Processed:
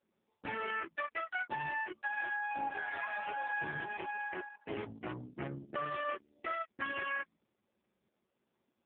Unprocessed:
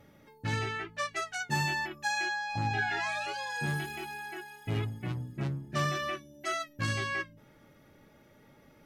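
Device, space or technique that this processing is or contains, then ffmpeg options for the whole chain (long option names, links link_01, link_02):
voicemail: -filter_complex "[0:a]asplit=3[link_01][link_02][link_03];[link_01]afade=type=out:start_time=1.81:duration=0.02[link_04];[link_02]highpass=frequency=88:poles=1,afade=type=in:start_time=1.81:duration=0.02,afade=type=out:start_time=2.6:duration=0.02[link_05];[link_03]afade=type=in:start_time=2.6:duration=0.02[link_06];[link_04][link_05][link_06]amix=inputs=3:normalize=0,anlmdn=0.1,highpass=310,lowpass=3000,acompressor=threshold=-37dB:ratio=12,volume=5dB" -ar 8000 -c:a libopencore_amrnb -b:a 4750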